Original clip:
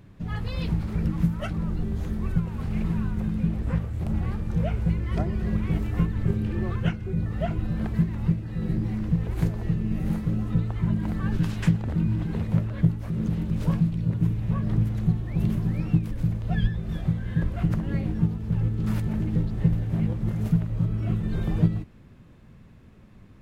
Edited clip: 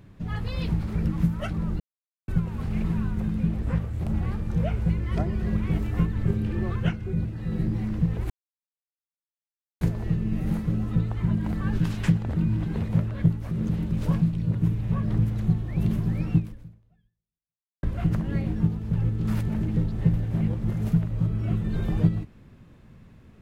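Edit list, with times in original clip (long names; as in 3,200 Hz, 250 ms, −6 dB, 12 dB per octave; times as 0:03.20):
0:01.80–0:02.28: silence
0:07.25–0:08.35: remove
0:09.40: splice in silence 1.51 s
0:15.97–0:17.42: fade out exponential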